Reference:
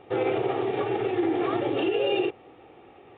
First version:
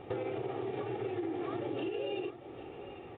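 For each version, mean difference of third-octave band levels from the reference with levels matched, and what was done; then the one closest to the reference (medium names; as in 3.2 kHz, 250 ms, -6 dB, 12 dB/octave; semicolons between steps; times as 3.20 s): 4.0 dB: bass shelf 250 Hz +8 dB; compression 6:1, threshold -35 dBFS, peak gain reduction 15.5 dB; delay 797 ms -13.5 dB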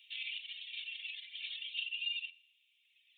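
18.5 dB: reverb removal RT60 1.8 s; steep high-pass 2.7 kHz 48 dB/octave; compression 6:1, threshold -43 dBFS, peak gain reduction 9 dB; FDN reverb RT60 0.89 s, high-frequency decay 0.8×, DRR 14.5 dB; trim +7.5 dB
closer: first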